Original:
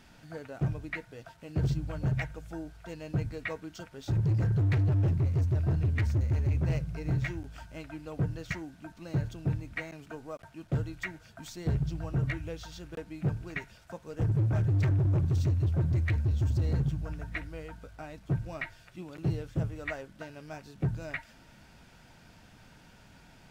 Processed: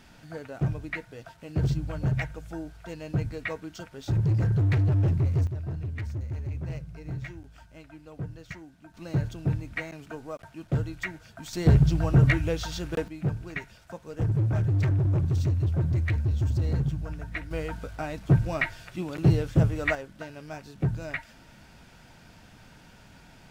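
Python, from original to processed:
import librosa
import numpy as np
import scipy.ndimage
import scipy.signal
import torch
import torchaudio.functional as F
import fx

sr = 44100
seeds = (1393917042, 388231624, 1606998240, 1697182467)

y = fx.gain(x, sr, db=fx.steps((0.0, 3.0), (5.47, -5.5), (8.94, 3.5), (11.53, 11.0), (13.08, 2.0), (17.51, 10.0), (19.95, 3.5)))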